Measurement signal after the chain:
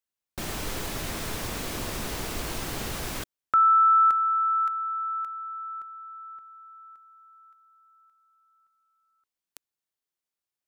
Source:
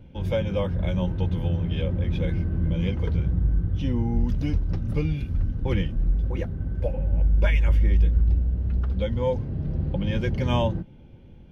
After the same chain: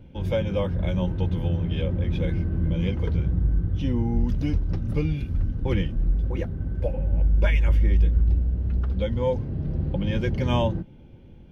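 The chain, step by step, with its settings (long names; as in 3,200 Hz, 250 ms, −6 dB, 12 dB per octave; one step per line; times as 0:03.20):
parametric band 330 Hz +2 dB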